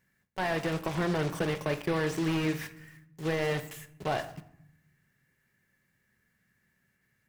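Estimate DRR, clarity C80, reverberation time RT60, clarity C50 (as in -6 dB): 10.5 dB, 17.5 dB, 0.75 s, 15.0 dB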